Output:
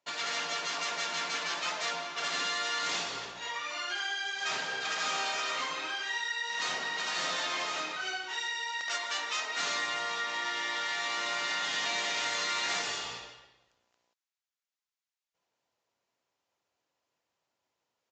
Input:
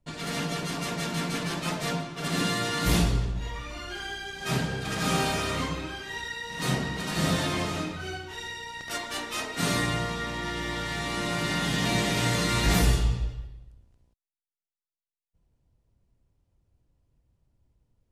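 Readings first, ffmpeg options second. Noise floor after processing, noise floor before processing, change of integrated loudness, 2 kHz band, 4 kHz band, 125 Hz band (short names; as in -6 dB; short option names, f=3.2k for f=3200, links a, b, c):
under -85 dBFS, under -85 dBFS, -3.5 dB, 0.0 dB, 0.0 dB, -30.5 dB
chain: -af "highpass=820,acompressor=threshold=-37dB:ratio=3,aresample=16000,aresample=44100,volume=5.5dB"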